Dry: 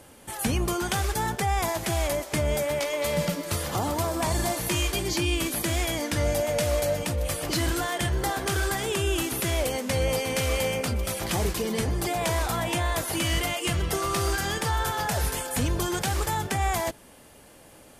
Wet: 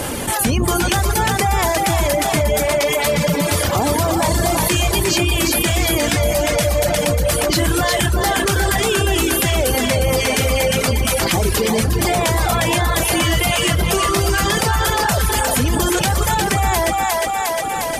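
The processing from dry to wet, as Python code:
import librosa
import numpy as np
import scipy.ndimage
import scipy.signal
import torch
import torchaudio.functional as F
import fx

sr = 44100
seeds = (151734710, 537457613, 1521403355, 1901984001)

p1 = x + fx.echo_split(x, sr, split_hz=470.0, low_ms=126, high_ms=356, feedback_pct=52, wet_db=-4.0, dry=0)
p2 = fx.dereverb_blind(p1, sr, rt60_s=0.93)
p3 = fx.env_flatten(p2, sr, amount_pct=70)
y = p3 * librosa.db_to_amplitude(7.0)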